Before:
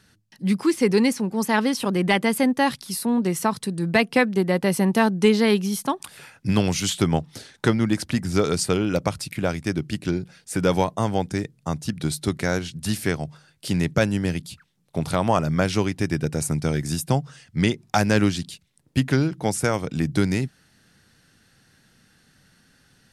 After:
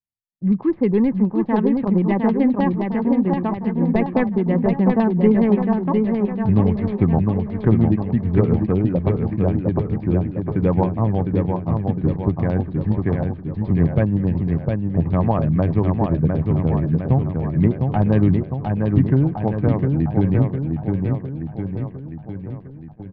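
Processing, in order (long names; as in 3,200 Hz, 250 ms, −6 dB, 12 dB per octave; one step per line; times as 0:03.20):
running median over 15 samples
notch filter 1,400 Hz, Q 5
repeating echo 706 ms, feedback 57%, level −4 dB
auto-filter low-pass saw down 9.6 Hz 810–5,000 Hz
spectral tilt −3.5 dB per octave
noise gate −35 dBFS, range −47 dB
high-frequency loss of the air 190 metres
level −4.5 dB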